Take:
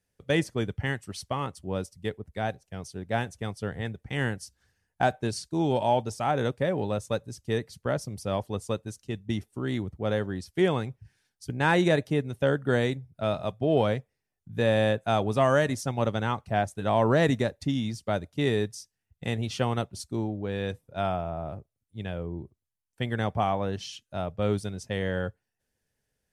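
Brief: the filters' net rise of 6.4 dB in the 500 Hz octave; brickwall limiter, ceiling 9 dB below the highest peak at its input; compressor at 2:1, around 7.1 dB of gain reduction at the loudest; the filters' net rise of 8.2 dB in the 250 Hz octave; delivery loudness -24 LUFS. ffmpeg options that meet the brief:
-af "equalizer=f=250:t=o:g=9,equalizer=f=500:t=o:g=5.5,acompressor=threshold=-25dB:ratio=2,volume=7.5dB,alimiter=limit=-12dB:level=0:latency=1"

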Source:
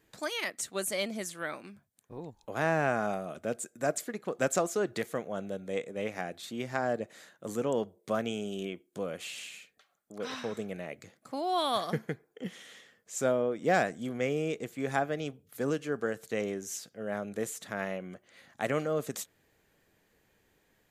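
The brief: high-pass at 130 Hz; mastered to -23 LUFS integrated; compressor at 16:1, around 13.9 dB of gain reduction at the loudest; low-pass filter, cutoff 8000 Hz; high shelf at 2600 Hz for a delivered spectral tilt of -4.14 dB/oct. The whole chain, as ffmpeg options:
-af "highpass=130,lowpass=8k,highshelf=f=2.6k:g=-3.5,acompressor=threshold=-36dB:ratio=16,volume=20dB"

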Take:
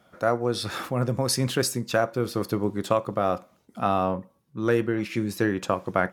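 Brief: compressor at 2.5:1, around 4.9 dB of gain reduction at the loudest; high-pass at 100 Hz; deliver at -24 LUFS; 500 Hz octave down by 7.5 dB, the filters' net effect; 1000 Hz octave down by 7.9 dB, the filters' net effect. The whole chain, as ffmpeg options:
-af "highpass=100,equalizer=f=500:t=o:g=-7,equalizer=f=1k:t=o:g=-9,acompressor=threshold=-30dB:ratio=2.5,volume=10dB"

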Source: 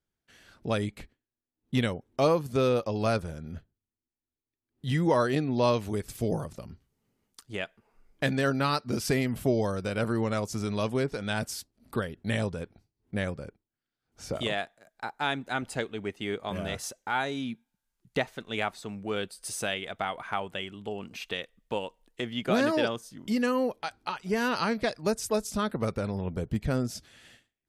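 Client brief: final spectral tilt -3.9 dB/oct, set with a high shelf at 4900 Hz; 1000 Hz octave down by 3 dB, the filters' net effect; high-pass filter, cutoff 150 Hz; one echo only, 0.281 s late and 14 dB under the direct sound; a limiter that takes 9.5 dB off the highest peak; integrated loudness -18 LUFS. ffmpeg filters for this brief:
-af "highpass=150,equalizer=f=1k:t=o:g=-4.5,highshelf=f=4.9k:g=8.5,alimiter=limit=-20.5dB:level=0:latency=1,aecho=1:1:281:0.2,volume=15.5dB"

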